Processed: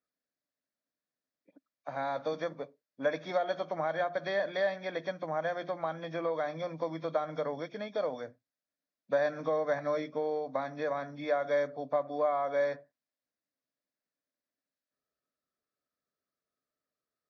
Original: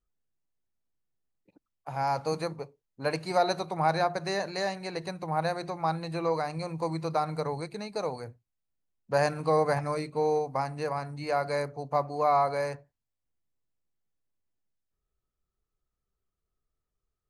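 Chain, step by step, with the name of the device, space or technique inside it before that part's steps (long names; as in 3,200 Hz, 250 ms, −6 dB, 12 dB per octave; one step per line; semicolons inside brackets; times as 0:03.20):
hearing aid with frequency lowering (hearing-aid frequency compression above 2,200 Hz 1.5 to 1; downward compressor 4 to 1, threshold −29 dBFS, peak gain reduction 9 dB; loudspeaker in its box 260–5,400 Hz, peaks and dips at 270 Hz +7 dB, 380 Hz −7 dB, 600 Hz +8 dB, 860 Hz −8 dB, 1,700 Hz +5 dB, 3,000 Hz −8 dB)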